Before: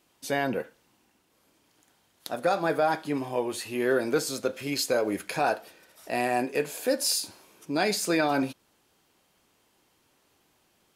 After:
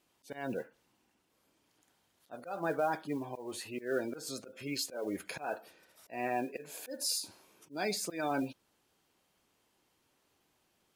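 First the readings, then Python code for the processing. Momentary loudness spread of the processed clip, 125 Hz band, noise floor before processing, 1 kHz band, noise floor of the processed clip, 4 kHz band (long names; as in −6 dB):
11 LU, −9.0 dB, −68 dBFS, −9.5 dB, −75 dBFS, −8.0 dB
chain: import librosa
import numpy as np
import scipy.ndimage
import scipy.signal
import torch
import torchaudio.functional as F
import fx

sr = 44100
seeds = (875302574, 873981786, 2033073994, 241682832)

y = fx.auto_swell(x, sr, attack_ms=176.0)
y = fx.spec_gate(y, sr, threshold_db=-25, keep='strong')
y = fx.mod_noise(y, sr, seeds[0], snr_db=28)
y = y * librosa.db_to_amplitude(-7.0)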